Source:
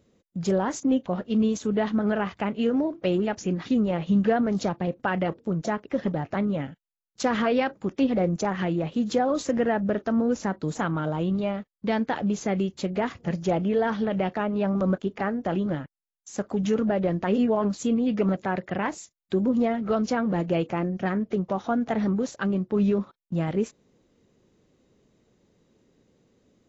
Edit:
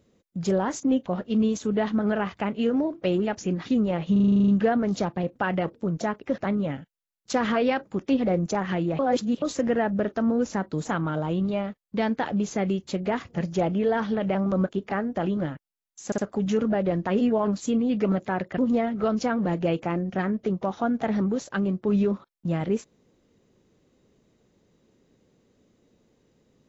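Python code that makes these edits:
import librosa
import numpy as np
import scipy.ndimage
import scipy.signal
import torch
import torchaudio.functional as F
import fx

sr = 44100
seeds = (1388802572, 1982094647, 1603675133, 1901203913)

y = fx.edit(x, sr, fx.stutter(start_s=4.12, slice_s=0.04, count=10),
    fx.cut(start_s=6.02, length_s=0.26),
    fx.reverse_span(start_s=8.89, length_s=0.43),
    fx.cut(start_s=14.25, length_s=0.39),
    fx.stutter(start_s=16.35, slice_s=0.06, count=3),
    fx.cut(start_s=18.75, length_s=0.7), tone=tone)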